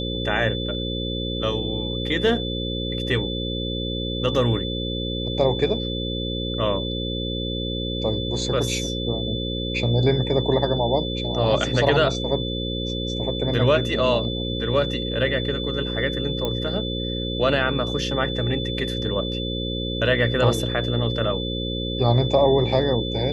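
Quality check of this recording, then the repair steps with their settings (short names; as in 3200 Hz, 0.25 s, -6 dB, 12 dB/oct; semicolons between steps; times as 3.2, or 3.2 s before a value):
buzz 60 Hz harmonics 9 -28 dBFS
tone 3500 Hz -30 dBFS
16.45 pop -12 dBFS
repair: de-click; notch 3500 Hz, Q 30; de-hum 60 Hz, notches 9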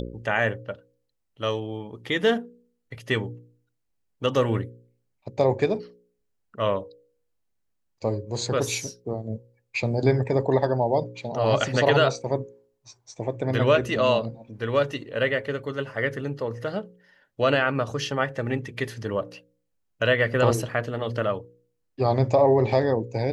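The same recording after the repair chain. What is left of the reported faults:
none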